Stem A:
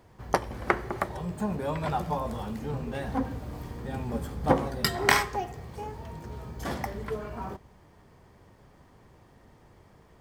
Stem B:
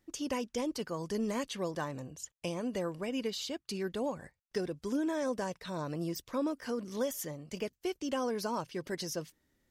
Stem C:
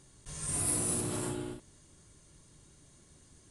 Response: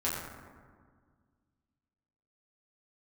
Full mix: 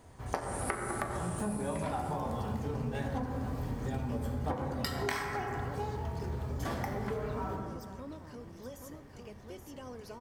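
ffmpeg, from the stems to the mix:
-filter_complex "[0:a]volume=-4.5dB,asplit=2[a][b];[b]volume=-4.5dB[c];[1:a]adelay=1650,volume=-14.5dB,asplit=3[d][e][f];[e]volume=-17.5dB[g];[f]volume=-4.5dB[h];[2:a]volume=-8dB,asplit=2[i][j];[j]volume=-3.5dB[k];[3:a]atrim=start_sample=2205[l];[c][g]amix=inputs=2:normalize=0[m];[m][l]afir=irnorm=-1:irlink=0[n];[h][k]amix=inputs=2:normalize=0,aecho=0:1:826:1[o];[a][d][i][n][o]amix=inputs=5:normalize=0,acompressor=threshold=-31dB:ratio=8"

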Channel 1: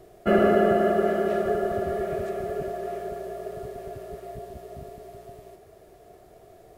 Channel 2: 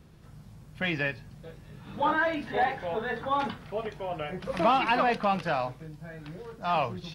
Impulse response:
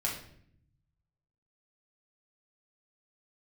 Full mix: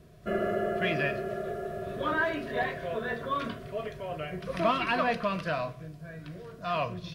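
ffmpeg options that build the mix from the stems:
-filter_complex "[0:a]volume=-12.5dB,asplit=2[a][b];[b]volume=-8.5dB[c];[1:a]volume=-3dB,asplit=2[d][e];[e]volume=-14.5dB[f];[2:a]atrim=start_sample=2205[g];[c][f]amix=inputs=2:normalize=0[h];[h][g]afir=irnorm=-1:irlink=0[i];[a][d][i]amix=inputs=3:normalize=0,asuperstop=centerf=830:order=8:qfactor=3.9"

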